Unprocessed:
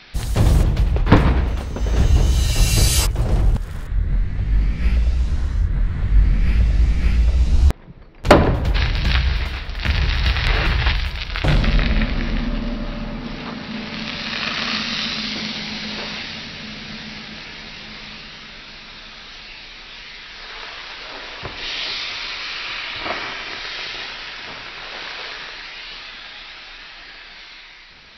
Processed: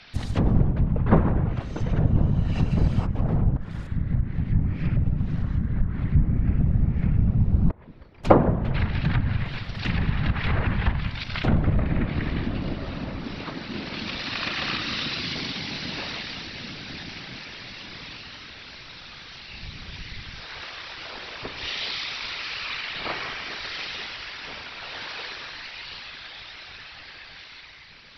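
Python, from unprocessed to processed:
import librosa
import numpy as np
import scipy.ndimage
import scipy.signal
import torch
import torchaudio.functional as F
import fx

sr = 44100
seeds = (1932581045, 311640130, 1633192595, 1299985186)

y = fx.whisperise(x, sr, seeds[0])
y = fx.env_lowpass_down(y, sr, base_hz=1100.0, full_db=-12.5)
y = fx.bass_treble(y, sr, bass_db=14, treble_db=1, at=(19.53, 20.4))
y = F.gain(torch.from_numpy(y), -4.5).numpy()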